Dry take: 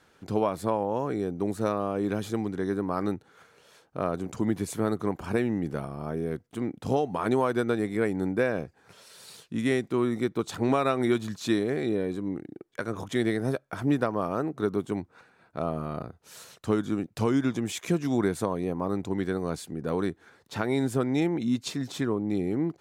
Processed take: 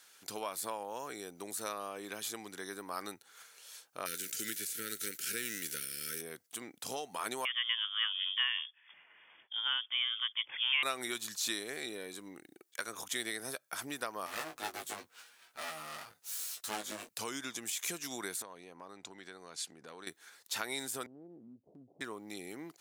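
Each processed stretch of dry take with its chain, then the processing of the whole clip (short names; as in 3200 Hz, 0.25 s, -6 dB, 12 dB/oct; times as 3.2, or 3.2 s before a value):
1.89–2.47 tone controls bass -1 dB, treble -4 dB + notch 1400 Hz, Q 26
4.05–6.2 spectral whitening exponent 0.6 + brick-wall FIR band-stop 540–1300 Hz
7.45–10.83 bell 280 Hz -15 dB 2.4 oct + inverted band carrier 3400 Hz
14.26–17.09 minimum comb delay 8.4 ms + doubler 19 ms -4 dB
18.42–20.07 air absorption 82 m + notches 60/120 Hz + compressor 3:1, threshold -36 dBFS
21.06–22.01 steep low-pass 690 Hz 48 dB/oct + compressor 3:1, threshold -40 dBFS + low shelf 180 Hz +7.5 dB
whole clip: compressor 1.5:1, threshold -30 dBFS; differentiator; de-esser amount 95%; gain +11 dB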